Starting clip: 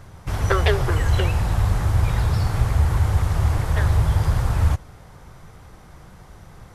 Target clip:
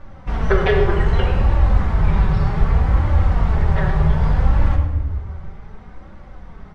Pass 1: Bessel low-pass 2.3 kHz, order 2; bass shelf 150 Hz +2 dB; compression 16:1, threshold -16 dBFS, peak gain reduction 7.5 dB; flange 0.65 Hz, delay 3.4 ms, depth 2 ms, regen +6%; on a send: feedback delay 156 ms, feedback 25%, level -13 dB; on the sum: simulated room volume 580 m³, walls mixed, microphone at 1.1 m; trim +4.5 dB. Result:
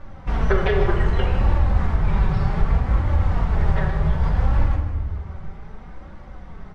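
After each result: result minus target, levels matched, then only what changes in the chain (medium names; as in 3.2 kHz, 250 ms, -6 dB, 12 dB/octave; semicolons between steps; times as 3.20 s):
echo 51 ms late; compression: peak gain reduction +7.5 dB
change: feedback delay 105 ms, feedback 25%, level -13 dB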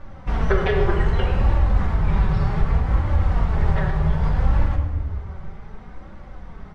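compression: peak gain reduction +7.5 dB
remove: compression 16:1, threshold -16 dBFS, peak gain reduction 7.5 dB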